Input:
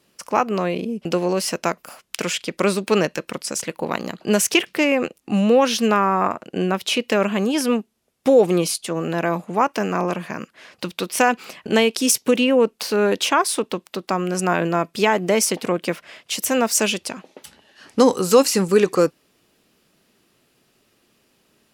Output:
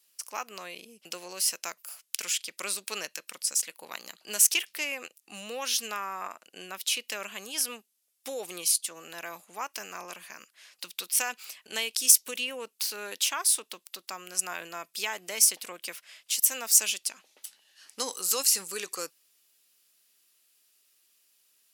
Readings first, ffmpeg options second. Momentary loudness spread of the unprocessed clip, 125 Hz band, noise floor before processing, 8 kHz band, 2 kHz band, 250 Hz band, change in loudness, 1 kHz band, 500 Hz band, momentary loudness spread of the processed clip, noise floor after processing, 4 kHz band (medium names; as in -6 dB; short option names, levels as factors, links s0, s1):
12 LU, under -30 dB, -64 dBFS, +0.5 dB, -10.5 dB, -29.0 dB, -7.0 dB, -17.0 dB, -23.0 dB, 21 LU, -73 dBFS, -5.5 dB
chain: -af "aderivative"